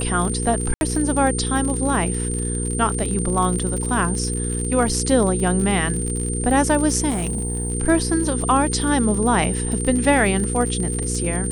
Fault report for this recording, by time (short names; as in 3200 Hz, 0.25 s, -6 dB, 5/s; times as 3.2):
crackle 61/s -25 dBFS
hum 60 Hz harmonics 8 -25 dBFS
tone 8900 Hz -27 dBFS
0.74–0.81 gap 71 ms
7.09–7.72 clipped -19.5 dBFS